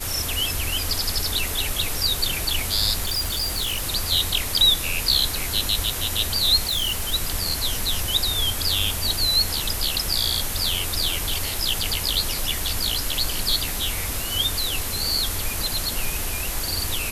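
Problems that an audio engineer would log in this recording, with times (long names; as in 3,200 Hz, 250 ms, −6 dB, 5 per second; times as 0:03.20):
0:03.04–0:03.85: clipping −21 dBFS
0:06.66–0:07.14: clipping −20 dBFS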